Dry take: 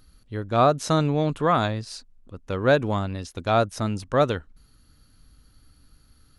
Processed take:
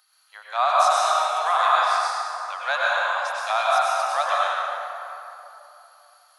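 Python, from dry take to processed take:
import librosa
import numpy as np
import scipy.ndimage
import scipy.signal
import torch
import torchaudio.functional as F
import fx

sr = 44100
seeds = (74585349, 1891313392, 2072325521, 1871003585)

y = scipy.signal.sosfilt(scipy.signal.butter(8, 720.0, 'highpass', fs=sr, output='sos'), x)
y = fx.rev_plate(y, sr, seeds[0], rt60_s=3.0, hf_ratio=0.55, predelay_ms=85, drr_db=-6.5)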